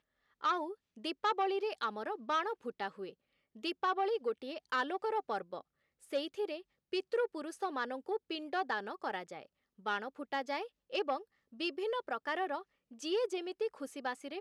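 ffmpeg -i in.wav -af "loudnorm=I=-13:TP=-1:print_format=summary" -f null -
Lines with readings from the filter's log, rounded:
Input Integrated:    -37.5 LUFS
Input True Peak:     -22.4 dBTP
Input LRA:             2.4 LU
Input Threshold:     -47.8 LUFS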